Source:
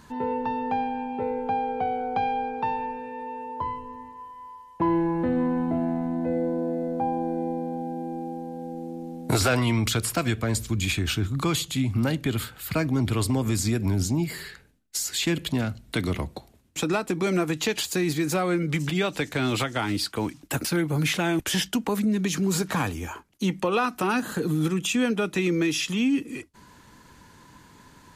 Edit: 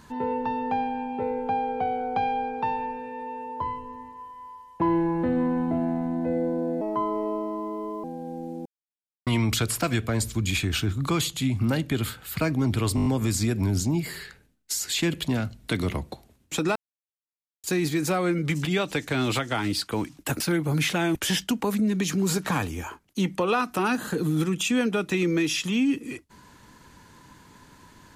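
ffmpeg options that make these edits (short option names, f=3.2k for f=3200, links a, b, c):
-filter_complex "[0:a]asplit=12[a][b][c][d][e][f][g][h][i][j][k][l];[a]atrim=end=6.814[m];[b]atrim=start=6.81:end=8.38,asetpts=PTS-STARTPTS,asetrate=56448,aresample=44100,atrim=end_sample=54091,asetpts=PTS-STARTPTS[n];[c]atrim=start=8.376:end=9,asetpts=PTS-STARTPTS,afade=t=out:st=0.62:d=0.004:c=hsin[o];[d]atrim=start=9:end=9.61,asetpts=PTS-STARTPTS,volume=0[p];[e]atrim=start=9.61:end=13.322,asetpts=PTS-STARTPTS,afade=t=in:d=0.004:c=hsin[q];[f]atrim=start=13.298:end=13.322[r];[g]atrim=start=13.298:end=13.322[s];[h]atrim=start=13.298:end=13.322[t];[i]atrim=start=13.298:end=13.322[u];[j]atrim=start=13.298:end=17,asetpts=PTS-STARTPTS,afade=t=out:st=3.698:d=0.004:c=hsin[v];[k]atrim=start=17:end=17.88,asetpts=PTS-STARTPTS,volume=0[w];[l]atrim=start=17.88,asetpts=PTS-STARTPTS,afade=t=in:d=0.004:c=hsin[x];[m][n]acrossfade=d=0.004:c1=hsin:c2=hsin[y];[o][p][q]concat=n=3:v=0:a=1[z];[y][z]acrossfade=d=0.004:c1=hsin:c2=hsin[aa];[aa][r]acrossfade=d=0.004:c1=hsin:c2=hsin[ab];[ab][s]acrossfade=d=0.004:c1=hsin:c2=hsin[ac];[ac][t]acrossfade=d=0.004:c1=hsin:c2=hsin[ad];[ad][u]acrossfade=d=0.004:c1=hsin:c2=hsin[ae];[v][w][x]concat=n=3:v=0:a=1[af];[ae][af]acrossfade=d=0.004:c1=hsin:c2=hsin"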